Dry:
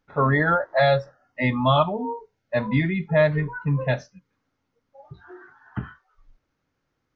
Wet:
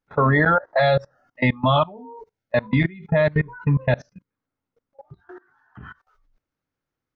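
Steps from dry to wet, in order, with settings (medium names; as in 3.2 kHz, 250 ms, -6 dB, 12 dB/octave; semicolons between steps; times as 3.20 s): 3.89–5.20 s: treble shelf 2.4 kHz -6 dB; level held to a coarse grid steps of 23 dB; trim +6.5 dB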